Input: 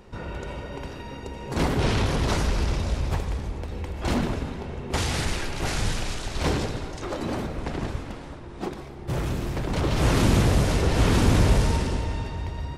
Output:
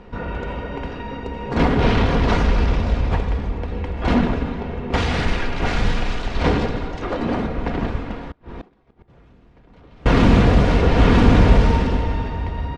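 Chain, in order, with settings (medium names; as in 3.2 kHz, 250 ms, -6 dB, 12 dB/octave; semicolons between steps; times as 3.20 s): low-pass 3 kHz 12 dB/octave; comb 4.2 ms, depth 34%; 8.31–10.06 s: inverted gate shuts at -30 dBFS, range -29 dB; trim +6.5 dB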